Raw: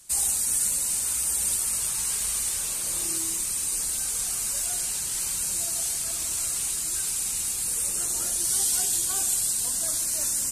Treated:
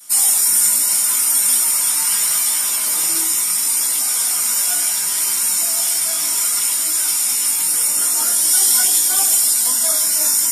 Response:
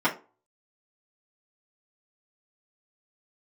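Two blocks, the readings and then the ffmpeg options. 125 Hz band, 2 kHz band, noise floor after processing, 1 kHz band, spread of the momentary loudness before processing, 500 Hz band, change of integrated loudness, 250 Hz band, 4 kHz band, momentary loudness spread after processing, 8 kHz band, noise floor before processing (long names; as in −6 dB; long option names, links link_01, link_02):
can't be measured, +12.0 dB, −19 dBFS, +12.5 dB, 4 LU, +8.0 dB, +10.5 dB, +6.0 dB, +11.5 dB, 4 LU, +9.5 dB, −30 dBFS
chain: -filter_complex "[0:a]flanger=delay=15.5:depth=4.4:speed=0.73,aemphasis=mode=production:type=riaa[link_01];[1:a]atrim=start_sample=2205[link_02];[link_01][link_02]afir=irnorm=-1:irlink=0,volume=-1dB"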